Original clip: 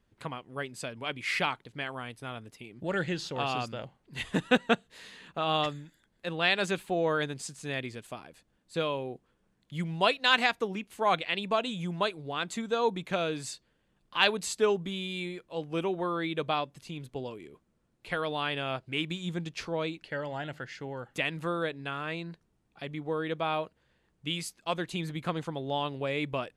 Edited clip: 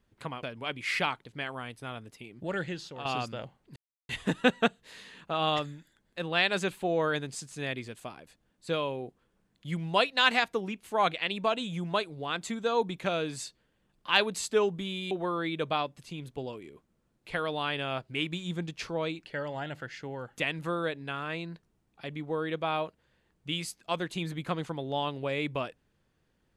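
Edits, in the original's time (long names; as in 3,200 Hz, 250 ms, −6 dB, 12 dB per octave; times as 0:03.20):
0:00.43–0:00.83: remove
0:02.70–0:03.45: fade out, to −10 dB
0:04.16: splice in silence 0.33 s
0:15.18–0:15.89: remove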